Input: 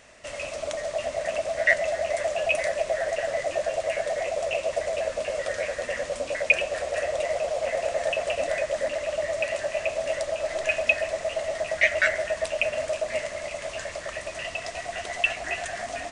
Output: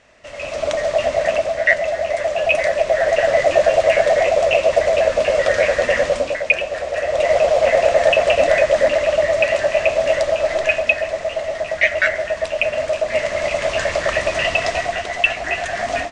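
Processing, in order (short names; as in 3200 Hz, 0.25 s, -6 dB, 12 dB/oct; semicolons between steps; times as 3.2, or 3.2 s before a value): AGC gain up to 16.5 dB; air absorption 84 m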